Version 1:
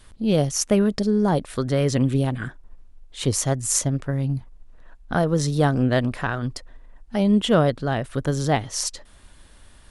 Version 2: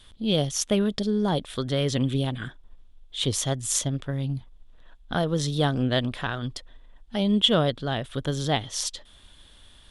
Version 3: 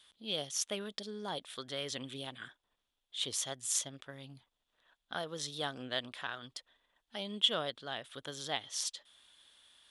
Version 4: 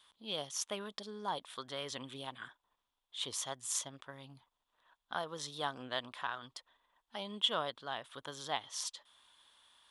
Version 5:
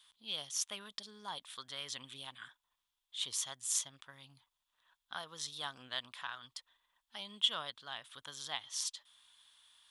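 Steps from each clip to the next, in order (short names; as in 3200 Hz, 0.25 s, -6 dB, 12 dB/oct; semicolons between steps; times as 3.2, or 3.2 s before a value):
bell 3400 Hz +14.5 dB 0.43 oct; gain -4.5 dB
HPF 1100 Hz 6 dB/oct; gain -7 dB
bell 1000 Hz +11 dB 0.73 oct; gain -3.5 dB
passive tone stack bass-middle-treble 5-5-5; gain +8.5 dB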